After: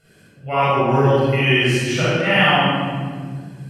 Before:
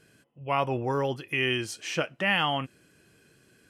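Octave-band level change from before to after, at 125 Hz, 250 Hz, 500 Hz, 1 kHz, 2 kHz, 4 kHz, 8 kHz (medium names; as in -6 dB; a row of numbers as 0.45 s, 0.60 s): +16.0 dB, +13.5 dB, +12.0 dB, +11.0 dB, +10.5 dB, +10.0 dB, +8.0 dB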